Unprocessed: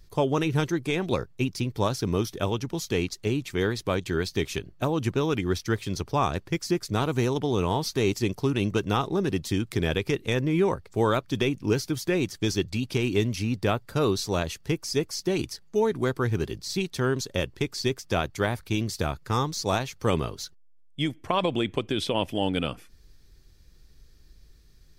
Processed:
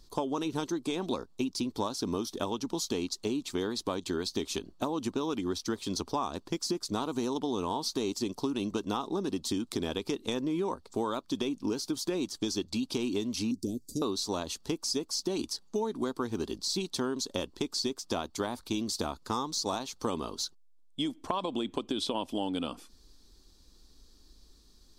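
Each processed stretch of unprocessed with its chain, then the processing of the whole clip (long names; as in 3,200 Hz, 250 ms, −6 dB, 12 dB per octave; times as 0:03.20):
0:13.51–0:14.02: Chebyshev band-stop filter 340–6,000 Hz, order 3 + parametric band 2,300 Hz +11.5 dB 0.58 octaves + one half of a high-frequency compander encoder only
whole clip: graphic EQ with 10 bands 125 Hz −12 dB, 250 Hz +11 dB, 1,000 Hz +10 dB, 2,000 Hz −9 dB, 4,000 Hz +9 dB, 8,000 Hz +7 dB; downward compressor, threshold −24 dBFS; level −4.5 dB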